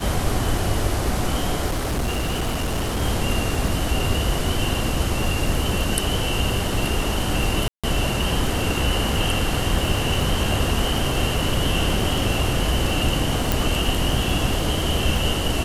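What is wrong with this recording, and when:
crackle 37/s -27 dBFS
1.66–3.02 clipped -19.5 dBFS
7.68–7.84 gap 0.156 s
13.52 pop

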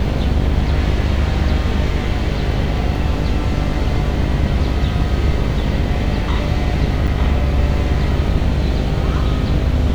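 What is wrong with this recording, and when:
buzz 50 Hz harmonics 16 -21 dBFS
7.07–7.08 gap 7.3 ms

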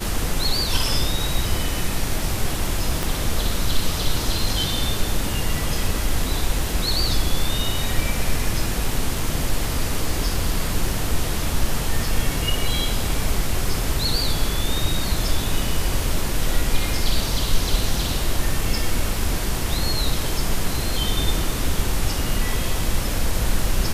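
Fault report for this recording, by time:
3.03 pop

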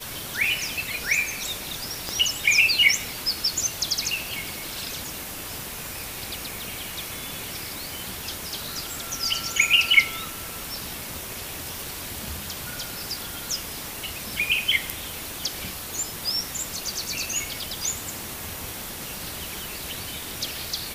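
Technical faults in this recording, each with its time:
2.09 pop -13 dBFS
15.94 pop

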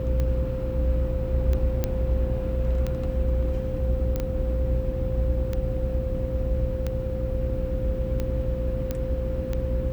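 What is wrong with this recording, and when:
buzz 60 Hz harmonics 9 -30 dBFS
tick 45 rpm -16 dBFS
tone 520 Hz -31 dBFS
1.84 pop -11 dBFS
4.16 pop -15 dBFS
8.91 pop -14 dBFS

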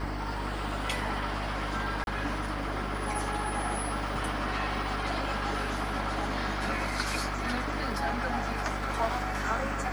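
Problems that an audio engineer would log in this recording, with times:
buzz 50 Hz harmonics 37 -36 dBFS
2.04–2.07 gap 31 ms

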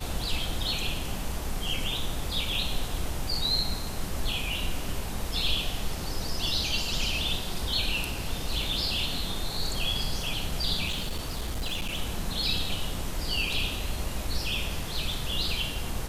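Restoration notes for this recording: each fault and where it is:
10.87–11.97 clipped -26.5 dBFS

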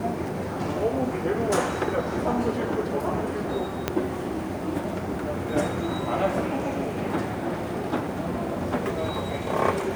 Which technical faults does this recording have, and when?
3.88 pop -8 dBFS

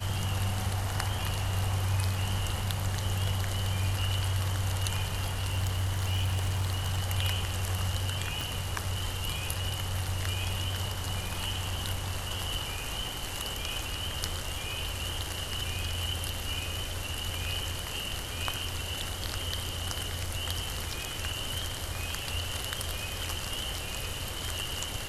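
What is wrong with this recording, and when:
5.21–7.01 clipped -24.5 dBFS
8.41 pop

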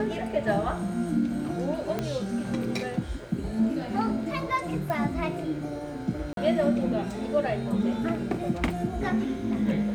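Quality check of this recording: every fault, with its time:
1.99 pop -15 dBFS
4.9 pop -19 dBFS
6.33–6.37 gap 42 ms

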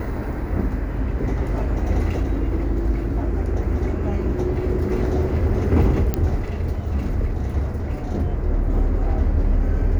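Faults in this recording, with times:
6.14 pop -8 dBFS

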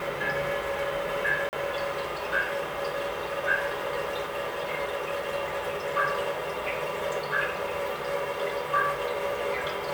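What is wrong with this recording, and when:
1.49–1.53 gap 39 ms

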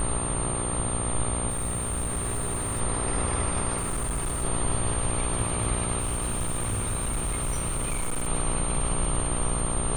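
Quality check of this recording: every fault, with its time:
buzz 60 Hz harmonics 22 -32 dBFS
crackle 18/s -34 dBFS
tone 9000 Hz -30 dBFS
1.5–2.81 clipped -24.5 dBFS
3.77–4.45 clipped -25 dBFS
6–8.29 clipped -24 dBFS

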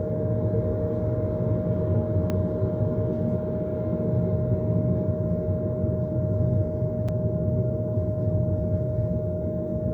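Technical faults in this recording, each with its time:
tone 620 Hz -30 dBFS
2.3 pop -15 dBFS
7.08–7.09 gap 5.8 ms

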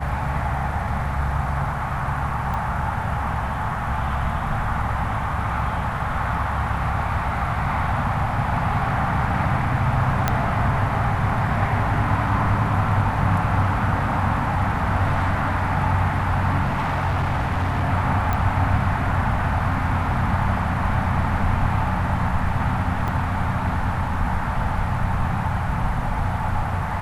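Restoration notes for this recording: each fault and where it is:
2.54 pop -17 dBFS
10.28 pop -5 dBFS
16.64–17.84 clipped -18 dBFS
18.33 pop -11 dBFS
23.08 gap 2.2 ms

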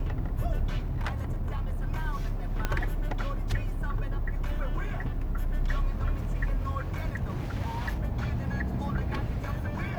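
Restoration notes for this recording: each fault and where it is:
0.78–1.86 clipped -26 dBFS
2.65 pop -13 dBFS

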